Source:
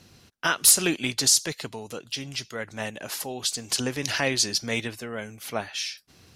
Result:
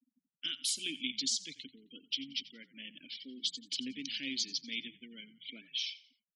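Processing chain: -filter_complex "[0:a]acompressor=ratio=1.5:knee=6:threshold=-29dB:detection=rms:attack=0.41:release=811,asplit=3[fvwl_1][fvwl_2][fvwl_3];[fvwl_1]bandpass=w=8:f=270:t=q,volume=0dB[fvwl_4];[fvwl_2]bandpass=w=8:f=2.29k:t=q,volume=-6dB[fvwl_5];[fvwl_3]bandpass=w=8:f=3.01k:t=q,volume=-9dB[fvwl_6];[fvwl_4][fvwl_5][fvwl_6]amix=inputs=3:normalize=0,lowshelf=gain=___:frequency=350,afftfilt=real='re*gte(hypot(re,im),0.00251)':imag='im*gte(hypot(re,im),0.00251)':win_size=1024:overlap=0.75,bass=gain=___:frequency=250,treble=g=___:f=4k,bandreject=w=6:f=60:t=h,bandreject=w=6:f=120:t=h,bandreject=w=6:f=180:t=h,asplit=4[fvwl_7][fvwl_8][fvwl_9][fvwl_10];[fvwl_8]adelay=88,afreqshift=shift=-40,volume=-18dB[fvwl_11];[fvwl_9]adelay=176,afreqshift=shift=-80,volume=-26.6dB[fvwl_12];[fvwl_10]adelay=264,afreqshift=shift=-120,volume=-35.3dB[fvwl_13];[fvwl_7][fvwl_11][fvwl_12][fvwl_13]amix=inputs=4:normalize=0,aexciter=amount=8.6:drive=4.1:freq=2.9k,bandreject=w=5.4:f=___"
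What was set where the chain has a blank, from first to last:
-9.5, 9, -3, 960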